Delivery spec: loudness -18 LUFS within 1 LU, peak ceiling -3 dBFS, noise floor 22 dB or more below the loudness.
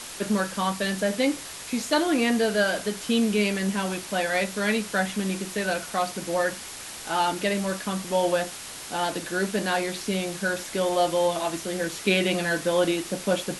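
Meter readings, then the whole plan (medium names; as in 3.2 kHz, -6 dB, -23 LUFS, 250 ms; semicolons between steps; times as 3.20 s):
noise floor -39 dBFS; noise floor target -48 dBFS; loudness -26.0 LUFS; peak level -8.5 dBFS; loudness target -18.0 LUFS
-> noise print and reduce 9 dB; trim +8 dB; peak limiter -3 dBFS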